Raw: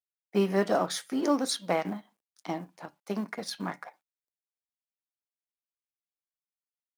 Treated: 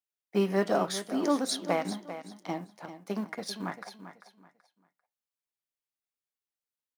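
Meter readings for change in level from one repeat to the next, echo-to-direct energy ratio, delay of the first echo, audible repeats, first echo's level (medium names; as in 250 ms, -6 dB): -11.5 dB, -11.5 dB, 394 ms, 2, -12.0 dB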